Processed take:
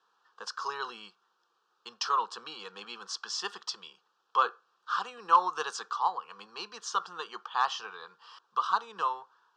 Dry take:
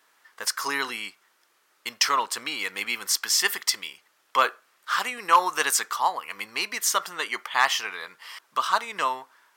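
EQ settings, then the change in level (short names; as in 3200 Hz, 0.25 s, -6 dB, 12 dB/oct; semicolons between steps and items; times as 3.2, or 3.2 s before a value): air absorption 200 m; speaker cabinet 220–8500 Hz, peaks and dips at 270 Hz -5 dB, 390 Hz -6 dB, 920 Hz -4 dB, 2200 Hz -6 dB; fixed phaser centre 410 Hz, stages 8; 0.0 dB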